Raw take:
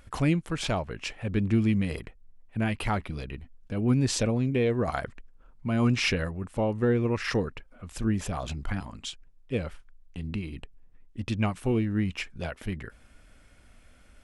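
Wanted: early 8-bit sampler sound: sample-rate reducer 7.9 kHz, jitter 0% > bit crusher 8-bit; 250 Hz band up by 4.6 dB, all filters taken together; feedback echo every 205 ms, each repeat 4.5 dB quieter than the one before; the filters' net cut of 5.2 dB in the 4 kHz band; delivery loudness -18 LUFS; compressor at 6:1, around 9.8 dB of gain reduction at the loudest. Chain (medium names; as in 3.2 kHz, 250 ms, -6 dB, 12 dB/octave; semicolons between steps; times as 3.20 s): peaking EQ 250 Hz +5.5 dB; peaking EQ 4 kHz -7.5 dB; compression 6:1, threshold -26 dBFS; feedback delay 205 ms, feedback 60%, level -4.5 dB; sample-rate reducer 7.9 kHz, jitter 0%; bit crusher 8-bit; trim +13.5 dB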